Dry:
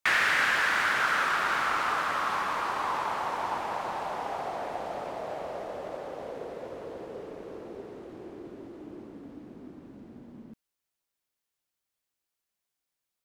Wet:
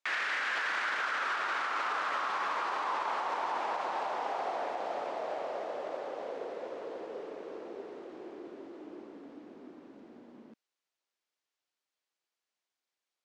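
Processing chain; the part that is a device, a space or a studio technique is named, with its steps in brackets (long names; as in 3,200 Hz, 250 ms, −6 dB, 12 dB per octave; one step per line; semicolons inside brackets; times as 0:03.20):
DJ mixer with the lows and highs turned down (three-way crossover with the lows and the highs turned down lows −22 dB, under 260 Hz, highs −22 dB, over 7,400 Hz; brickwall limiter −24.5 dBFS, peak gain reduction 11 dB)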